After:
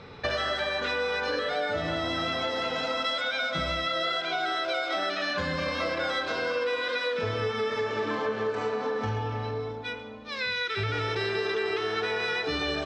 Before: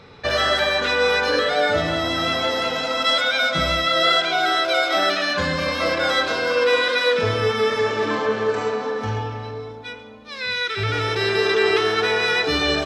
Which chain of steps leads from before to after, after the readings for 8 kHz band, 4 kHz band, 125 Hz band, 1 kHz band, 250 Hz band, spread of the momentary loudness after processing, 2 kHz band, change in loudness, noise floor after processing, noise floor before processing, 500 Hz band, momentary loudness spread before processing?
-12.5 dB, -10.0 dB, -6.5 dB, -8.5 dB, -7.5 dB, 3 LU, -8.5 dB, -9.0 dB, -38 dBFS, -37 dBFS, -8.5 dB, 8 LU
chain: compressor, threshold -26 dBFS, peak gain reduction 12 dB; air absorption 62 m

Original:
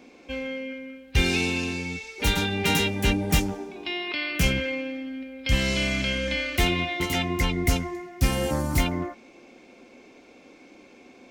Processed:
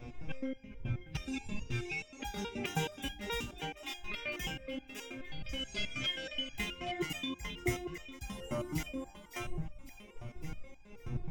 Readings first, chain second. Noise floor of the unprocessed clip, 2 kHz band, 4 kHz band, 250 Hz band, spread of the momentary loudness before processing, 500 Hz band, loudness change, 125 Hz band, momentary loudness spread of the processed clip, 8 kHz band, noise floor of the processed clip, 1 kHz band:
-52 dBFS, -13.5 dB, -11.0 dB, -13.0 dB, 11 LU, -12.5 dB, -13.5 dB, -13.0 dB, 11 LU, -14.0 dB, -55 dBFS, -11.5 dB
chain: wind noise 110 Hz -35 dBFS; reverb removal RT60 1.9 s; bell 12000 Hz -9 dB 0.99 oct; notch 4300 Hz, Q 5.7; split-band echo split 330 Hz, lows 97 ms, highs 0.555 s, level -10.5 dB; compressor 3:1, threshold -30 dBFS, peak gain reduction 10.5 dB; stepped resonator 9.4 Hz 120–810 Hz; gain +10 dB

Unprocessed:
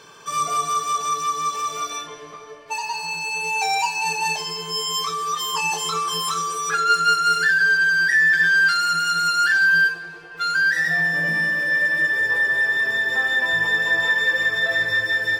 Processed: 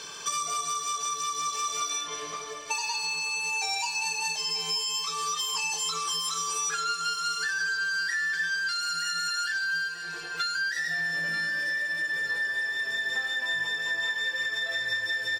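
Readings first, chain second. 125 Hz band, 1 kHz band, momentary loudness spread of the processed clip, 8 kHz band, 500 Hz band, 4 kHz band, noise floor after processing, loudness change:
-13.5 dB, -10.5 dB, 3 LU, -0.5 dB, -11.5 dB, -3.5 dB, -38 dBFS, -9.0 dB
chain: bell 5700 Hz +12.5 dB 2.5 oct; notches 50/100/150 Hz; compressor 10:1, threshold -26 dBFS, peak gain reduction 18 dB; on a send: feedback echo 0.93 s, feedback 40%, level -14 dB; on the sum: gain -1.5 dB

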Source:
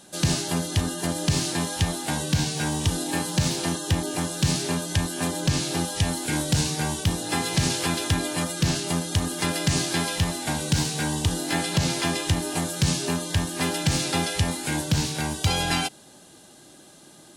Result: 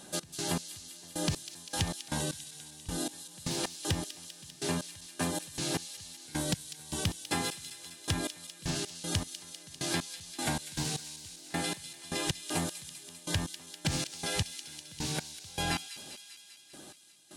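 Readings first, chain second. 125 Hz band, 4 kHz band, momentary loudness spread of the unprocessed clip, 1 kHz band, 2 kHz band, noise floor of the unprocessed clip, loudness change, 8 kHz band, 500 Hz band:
-13.0 dB, -9.0 dB, 3 LU, -10.0 dB, -10.0 dB, -50 dBFS, -10.5 dB, -9.0 dB, -9.5 dB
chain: compressor, threshold -28 dBFS, peak gain reduction 11 dB; step gate "x.x...x.." 78 bpm -24 dB; on a send: thin delay 0.198 s, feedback 70%, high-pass 3100 Hz, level -8 dB

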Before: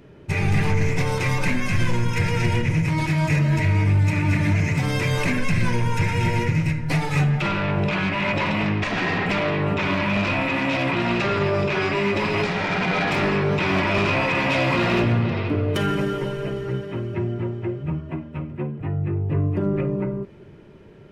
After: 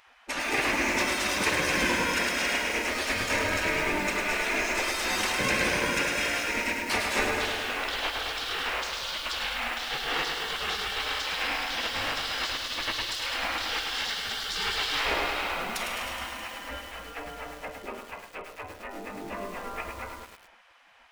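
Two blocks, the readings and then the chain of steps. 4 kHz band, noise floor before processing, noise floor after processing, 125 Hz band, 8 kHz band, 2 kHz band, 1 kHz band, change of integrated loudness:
+3.0 dB, -44 dBFS, -52 dBFS, -24.5 dB, +5.5 dB, -2.5 dB, -4.5 dB, -5.5 dB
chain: spectral gate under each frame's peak -20 dB weak; lo-fi delay 0.105 s, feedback 80%, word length 8-bit, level -5 dB; gain +3.5 dB

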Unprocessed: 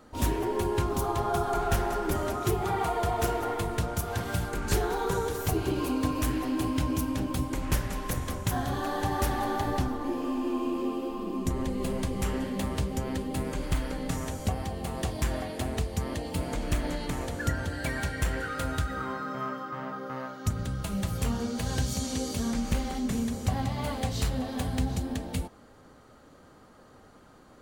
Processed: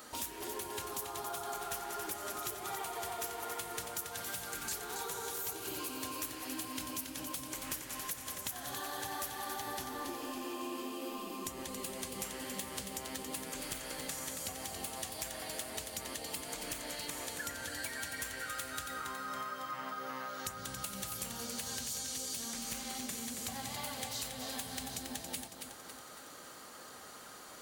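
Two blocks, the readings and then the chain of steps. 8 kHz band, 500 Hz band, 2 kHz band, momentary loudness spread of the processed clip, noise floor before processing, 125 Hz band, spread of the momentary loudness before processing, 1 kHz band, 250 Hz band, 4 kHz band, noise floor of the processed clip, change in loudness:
+1.0 dB, -13.0 dB, -6.0 dB, 3 LU, -54 dBFS, -22.5 dB, 5 LU, -9.5 dB, -15.5 dB, -2.0 dB, -51 dBFS, -9.0 dB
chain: tilt +4 dB/oct; compressor 5:1, threshold -44 dBFS, peak gain reduction 22 dB; lo-fi delay 0.277 s, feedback 55%, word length 11-bit, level -6 dB; gain +3.5 dB

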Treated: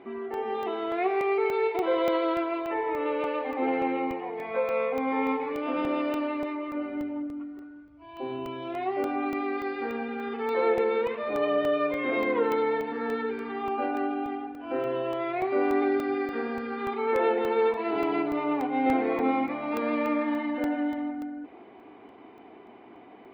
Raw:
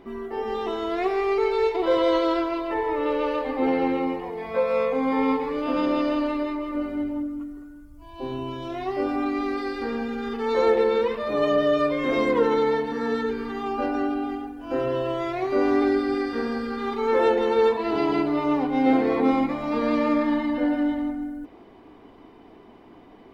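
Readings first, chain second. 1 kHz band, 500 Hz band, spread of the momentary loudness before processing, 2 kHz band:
-2.5 dB, -4.0 dB, 9 LU, -1.5 dB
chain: in parallel at -2.5 dB: compressor, threshold -35 dBFS, peak gain reduction 18.5 dB; on the sum: speaker cabinet 130–3600 Hz, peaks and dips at 160 Hz -6 dB, 380 Hz +3 dB, 750 Hz +6 dB, 1400 Hz +3 dB, 2300 Hz +7 dB; crackling interface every 0.29 s, samples 64, zero, from 0.34; gain -7 dB

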